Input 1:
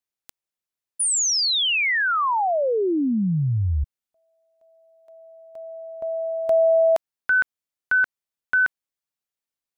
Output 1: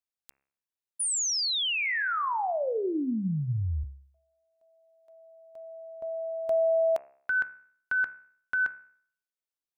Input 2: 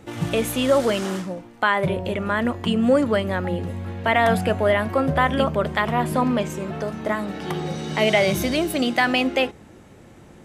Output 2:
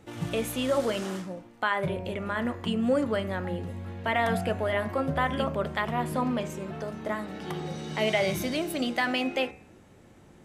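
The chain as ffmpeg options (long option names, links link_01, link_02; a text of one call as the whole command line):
ffmpeg -i in.wav -af "bandreject=frequency=68.32:width_type=h:width=4,bandreject=frequency=136.64:width_type=h:width=4,bandreject=frequency=204.96:width_type=h:width=4,bandreject=frequency=273.28:width_type=h:width=4,bandreject=frequency=341.6:width_type=h:width=4,bandreject=frequency=409.92:width_type=h:width=4,bandreject=frequency=478.24:width_type=h:width=4,bandreject=frequency=546.56:width_type=h:width=4,bandreject=frequency=614.88:width_type=h:width=4,bandreject=frequency=683.2:width_type=h:width=4,bandreject=frequency=751.52:width_type=h:width=4,bandreject=frequency=819.84:width_type=h:width=4,bandreject=frequency=888.16:width_type=h:width=4,bandreject=frequency=956.48:width_type=h:width=4,bandreject=frequency=1024.8:width_type=h:width=4,bandreject=frequency=1093.12:width_type=h:width=4,bandreject=frequency=1161.44:width_type=h:width=4,bandreject=frequency=1229.76:width_type=h:width=4,bandreject=frequency=1298.08:width_type=h:width=4,bandreject=frequency=1366.4:width_type=h:width=4,bandreject=frequency=1434.72:width_type=h:width=4,bandreject=frequency=1503.04:width_type=h:width=4,bandreject=frequency=1571.36:width_type=h:width=4,bandreject=frequency=1639.68:width_type=h:width=4,bandreject=frequency=1708:width_type=h:width=4,bandreject=frequency=1776.32:width_type=h:width=4,bandreject=frequency=1844.64:width_type=h:width=4,bandreject=frequency=1912.96:width_type=h:width=4,bandreject=frequency=1981.28:width_type=h:width=4,bandreject=frequency=2049.6:width_type=h:width=4,bandreject=frequency=2117.92:width_type=h:width=4,bandreject=frequency=2186.24:width_type=h:width=4,bandreject=frequency=2254.56:width_type=h:width=4,bandreject=frequency=2322.88:width_type=h:width=4,bandreject=frequency=2391.2:width_type=h:width=4,bandreject=frequency=2459.52:width_type=h:width=4,bandreject=frequency=2527.84:width_type=h:width=4,bandreject=frequency=2596.16:width_type=h:width=4,bandreject=frequency=2664.48:width_type=h:width=4,bandreject=frequency=2732.8:width_type=h:width=4,volume=-7dB" out.wav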